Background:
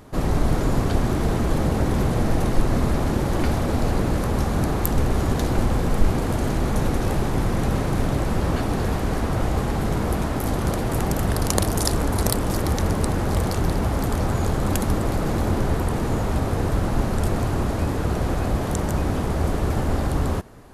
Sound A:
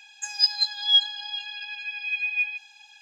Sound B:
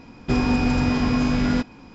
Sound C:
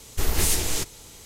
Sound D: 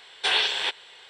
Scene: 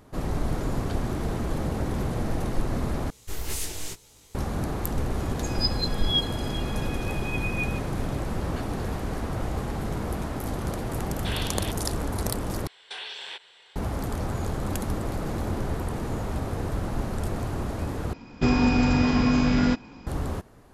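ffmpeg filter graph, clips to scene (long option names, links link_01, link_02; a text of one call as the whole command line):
ffmpeg -i bed.wav -i cue0.wav -i cue1.wav -i cue2.wav -i cue3.wav -filter_complex "[4:a]asplit=2[link_01][link_02];[0:a]volume=-7dB[link_03];[3:a]flanger=delay=15:depth=5.6:speed=2.1[link_04];[link_02]acompressor=threshold=-28dB:ratio=6:attack=3.2:release=140:knee=1:detection=peak[link_05];[link_03]asplit=4[link_06][link_07][link_08][link_09];[link_06]atrim=end=3.104[link_10];[link_04]atrim=end=1.25,asetpts=PTS-STARTPTS,volume=-6dB[link_11];[link_07]atrim=start=4.346:end=12.674[link_12];[link_05]atrim=end=1.09,asetpts=PTS-STARTPTS,volume=-6dB[link_13];[link_08]atrim=start=13.756:end=18.134[link_14];[2:a]atrim=end=1.94,asetpts=PTS-STARTPTS,volume=-0.5dB[link_15];[link_09]atrim=start=20.066[link_16];[1:a]atrim=end=3.01,asetpts=PTS-STARTPTS,volume=-7dB,afade=type=in:duration=0.004:curve=hsin,afade=type=out:start_time=3.006:duration=0.004:curve=hsin,adelay=229761S[link_17];[link_01]atrim=end=1.09,asetpts=PTS-STARTPTS,volume=-12dB,afade=type=in:duration=0.004:curve=hsin,afade=type=out:start_time=1.086:duration=0.004:curve=hsin,adelay=11010[link_18];[link_10][link_11]acrossfade=duration=0.004:curve1=hsin:curve2=hsin[link_19];[link_19][link_12]acrossfade=duration=0.004:curve1=hsin:curve2=hsin[link_20];[link_20][link_13]acrossfade=duration=0.004:curve1=hsin:curve2=hsin[link_21];[link_21][link_14]acrossfade=duration=0.004:curve1=hsin:curve2=hsin[link_22];[link_22][link_15]acrossfade=duration=0.004:curve1=hsin:curve2=hsin[link_23];[link_23][link_16]acrossfade=duration=0.004:curve1=hsin:curve2=hsin[link_24];[link_24][link_17][link_18]amix=inputs=3:normalize=0" out.wav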